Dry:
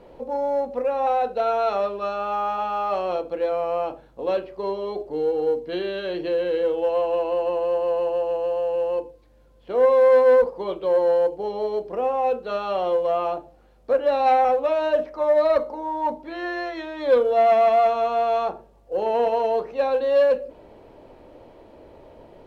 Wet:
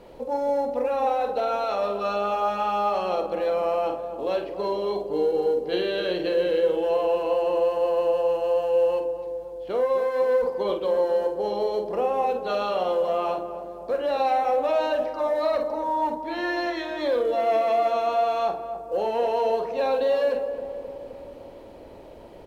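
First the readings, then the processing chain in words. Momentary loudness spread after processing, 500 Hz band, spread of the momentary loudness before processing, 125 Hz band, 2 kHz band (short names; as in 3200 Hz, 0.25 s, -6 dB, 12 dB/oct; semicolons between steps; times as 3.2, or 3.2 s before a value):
8 LU, -2.5 dB, 11 LU, n/a, -0.5 dB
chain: high shelf 3700 Hz +8.5 dB; limiter -18.5 dBFS, peak gain reduction 10 dB; doubler 49 ms -8 dB; darkening echo 0.262 s, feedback 71%, low-pass 1000 Hz, level -8.5 dB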